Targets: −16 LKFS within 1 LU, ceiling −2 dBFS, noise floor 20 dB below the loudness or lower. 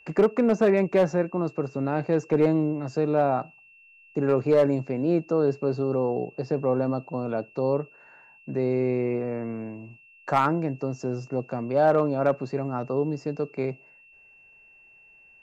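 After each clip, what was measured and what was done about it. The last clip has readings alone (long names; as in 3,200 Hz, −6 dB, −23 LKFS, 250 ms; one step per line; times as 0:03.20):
share of clipped samples 0.4%; peaks flattened at −13.0 dBFS; interfering tone 2,700 Hz; level of the tone −52 dBFS; integrated loudness −25.5 LKFS; sample peak −13.0 dBFS; target loudness −16.0 LKFS
→ clipped peaks rebuilt −13 dBFS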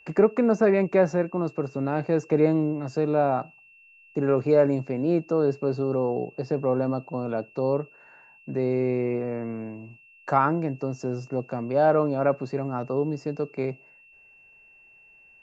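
share of clipped samples 0.0%; interfering tone 2,700 Hz; level of the tone −52 dBFS
→ notch filter 2,700 Hz, Q 30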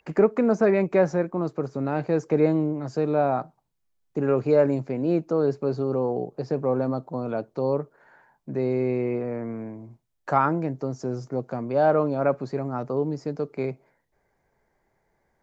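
interfering tone none found; integrated loudness −25.5 LKFS; sample peak −7.0 dBFS; target loudness −16.0 LKFS
→ level +9.5 dB
brickwall limiter −2 dBFS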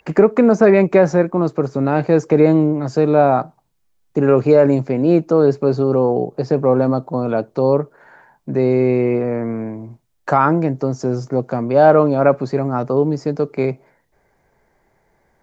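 integrated loudness −16.0 LKFS; sample peak −2.0 dBFS; background noise floor −63 dBFS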